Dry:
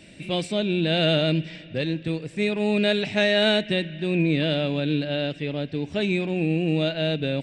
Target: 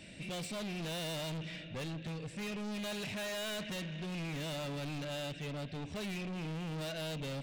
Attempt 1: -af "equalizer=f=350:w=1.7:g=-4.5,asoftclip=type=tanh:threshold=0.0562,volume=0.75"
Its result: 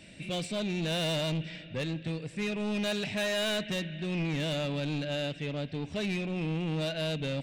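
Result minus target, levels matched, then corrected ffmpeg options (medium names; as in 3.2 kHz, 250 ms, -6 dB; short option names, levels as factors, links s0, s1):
saturation: distortion -6 dB
-af "equalizer=f=350:w=1.7:g=-4.5,asoftclip=type=tanh:threshold=0.0168,volume=0.75"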